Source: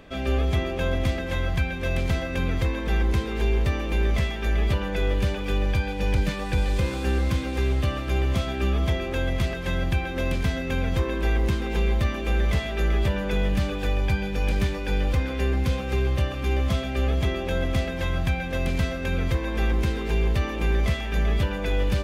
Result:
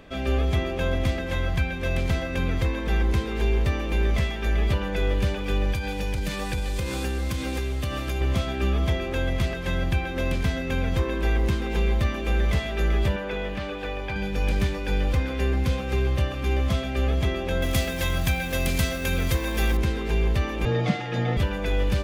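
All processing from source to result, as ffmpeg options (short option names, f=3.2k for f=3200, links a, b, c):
-filter_complex "[0:a]asettb=1/sr,asplit=3[a][b][c];[a]atrim=end=5.724[d];[b]atrim=start=5.72:end=8.21,asetpts=PTS-STARTPTS,afade=t=in:d=0.004:c=qsin,afade=t=out:st=2.486:d=0.004:c=qsin,highshelf=f=5k:g=9.5,acompressor=threshold=-23dB:ratio=6:attack=3.2:release=140:knee=1:detection=peak[e];[c]atrim=start=8.206[f];[d][e]acrossfade=d=0.004:c1=hsin:c2=qsin[g];[g][f]acrossfade=d=0.004:c1=qsin:c2=hsin,asettb=1/sr,asplit=3[h][i][j];[h]atrim=end=13.164[k];[i]atrim=start=13.16:end=14.16,asetpts=PTS-STARTPTS,afade=t=in:d=0.004:c=qsin,afade=t=out:st=0.996:d=0.004:c=qsin,acrossover=split=5100[l][m];[m]acompressor=threshold=-54dB:ratio=4:attack=1:release=60[n];[l][n]amix=inputs=2:normalize=0,bass=f=250:g=-11,treble=f=4k:g=-6[o];[j]atrim=start=14.156[p];[k][o]acrossfade=d=0.004:c1=hsin:c2=qsin[q];[q][p]acrossfade=d=0.004:c1=qsin:c2=hsin,asettb=1/sr,asplit=3[r][s][t];[r]atrim=end=17.624[u];[s]atrim=start=17.62:end=19.77,asetpts=PTS-STARTPTS,afade=t=in:d=0.004:c=qsin,afade=t=out:st=2.146:d=0.004:c=qsin,aemphasis=mode=production:type=75kf,acrusher=bits=8:dc=4:mix=0:aa=0.000001[v];[t]atrim=start=19.766[w];[u][v]acrossfade=d=0.004:c1=hsin:c2=qsin[x];[x][w]acrossfade=d=0.004:c1=qsin:c2=hsin,asettb=1/sr,asplit=3[y][z][aa];[y]atrim=end=20.654[ab];[z]atrim=start=20.65:end=21.37,asetpts=PTS-STARTPTS,afade=t=in:d=0.004:c=qsin,afade=t=out:st=0.716:d=0.004:c=qsin,lowpass=5.1k,aecho=1:1:7.4:0.79,atrim=end_sample=31752,afreqshift=68[ac];[aa]atrim=start=21.366[ad];[ab][ac]acrossfade=d=0.004:c1=hsin:c2=qsin[ae];[ae][ad]acrossfade=d=0.004:c1=qsin:c2=hsin"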